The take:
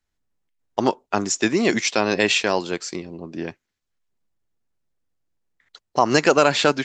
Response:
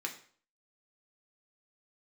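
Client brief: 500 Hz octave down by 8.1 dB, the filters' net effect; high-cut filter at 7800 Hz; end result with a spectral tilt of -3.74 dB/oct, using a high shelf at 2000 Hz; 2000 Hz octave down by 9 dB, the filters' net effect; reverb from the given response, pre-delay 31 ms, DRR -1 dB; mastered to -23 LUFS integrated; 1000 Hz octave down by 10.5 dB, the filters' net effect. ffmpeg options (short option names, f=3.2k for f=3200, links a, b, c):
-filter_complex "[0:a]lowpass=7.8k,equalizer=f=500:t=o:g=-7.5,equalizer=f=1k:t=o:g=-9,highshelf=f=2k:g=-3,equalizer=f=2k:t=o:g=-7,asplit=2[a][b];[1:a]atrim=start_sample=2205,adelay=31[c];[b][c]afir=irnorm=-1:irlink=0,volume=-1dB[d];[a][d]amix=inputs=2:normalize=0,volume=1dB"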